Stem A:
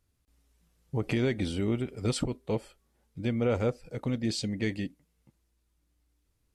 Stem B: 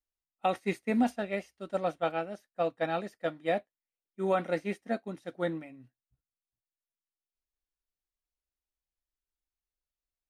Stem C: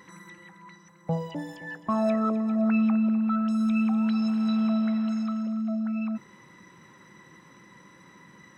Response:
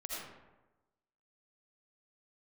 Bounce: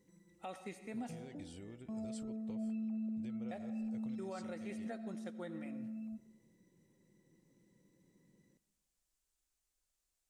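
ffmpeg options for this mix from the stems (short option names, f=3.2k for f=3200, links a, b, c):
-filter_complex "[0:a]acompressor=threshold=-32dB:ratio=6,volume=-16.5dB[a];[1:a]acompressor=threshold=-56dB:ratio=1.5,volume=3dB,asplit=3[b][c][d];[b]atrim=end=1.18,asetpts=PTS-STARTPTS,afade=t=out:st=1.176:d=0.004:c=hsin[e];[c]atrim=start=1.18:end=3.51,asetpts=PTS-STARTPTS,volume=0[f];[d]atrim=start=3.51,asetpts=PTS-STARTPTS,afade=t=in:d=0.004:c=hsin[g];[e][f][g]concat=n=3:v=0:a=1,asplit=2[h][i];[i]volume=-12.5dB[j];[2:a]firequalizer=gain_entry='entry(480,0);entry(1200,-27);entry(2000,-14)':delay=0.05:min_phase=1,volume=-15.5dB,asplit=2[k][l];[l]volume=-15.5dB[m];[3:a]atrim=start_sample=2205[n];[j][m]amix=inputs=2:normalize=0[o];[o][n]afir=irnorm=-1:irlink=0[p];[a][h][k][p]amix=inputs=4:normalize=0,equalizer=f=7.7k:t=o:w=0.97:g=10,alimiter=level_in=11dB:limit=-24dB:level=0:latency=1:release=278,volume=-11dB"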